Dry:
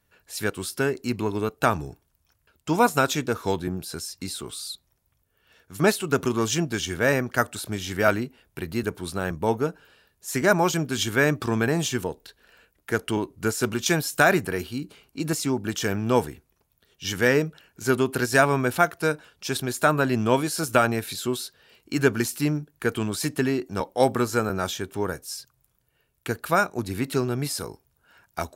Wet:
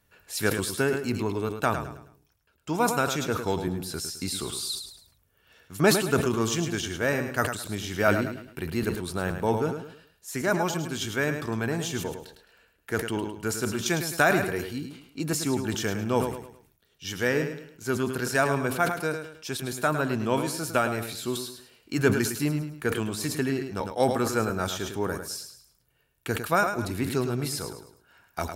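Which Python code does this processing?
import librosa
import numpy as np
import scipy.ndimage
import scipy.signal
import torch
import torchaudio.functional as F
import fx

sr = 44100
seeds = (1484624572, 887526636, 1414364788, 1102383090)

p1 = fx.rider(x, sr, range_db=10, speed_s=2.0)
p2 = p1 + fx.echo_feedback(p1, sr, ms=106, feedback_pct=31, wet_db=-9.0, dry=0)
p3 = fx.sustainer(p2, sr, db_per_s=83.0)
y = F.gain(torch.from_numpy(p3), -5.0).numpy()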